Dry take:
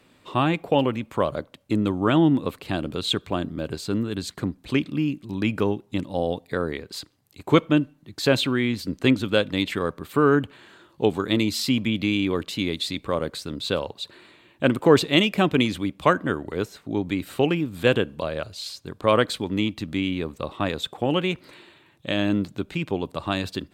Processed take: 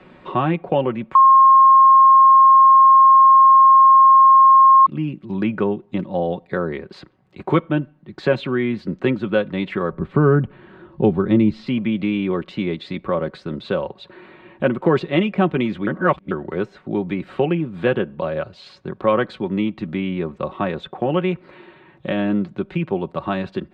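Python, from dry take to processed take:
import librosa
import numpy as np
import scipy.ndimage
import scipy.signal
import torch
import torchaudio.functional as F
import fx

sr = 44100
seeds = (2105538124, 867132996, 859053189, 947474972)

y = fx.riaa(x, sr, side='playback', at=(9.92, 11.67))
y = fx.edit(y, sr, fx.bleep(start_s=1.15, length_s=3.71, hz=1070.0, db=-6.5),
    fx.reverse_span(start_s=15.87, length_s=0.44), tone=tone)
y = scipy.signal.sosfilt(scipy.signal.butter(2, 2000.0, 'lowpass', fs=sr, output='sos'), y)
y = y + 0.54 * np.pad(y, (int(5.4 * sr / 1000.0), 0))[:len(y)]
y = fx.band_squash(y, sr, depth_pct=40)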